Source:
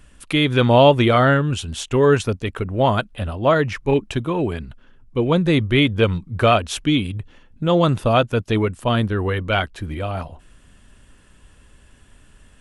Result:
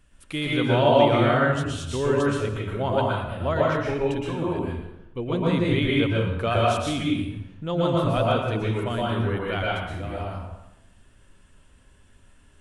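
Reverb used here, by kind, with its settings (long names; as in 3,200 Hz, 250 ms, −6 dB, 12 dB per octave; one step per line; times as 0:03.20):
dense smooth reverb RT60 0.92 s, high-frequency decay 0.7×, pre-delay 105 ms, DRR −4.5 dB
level −11 dB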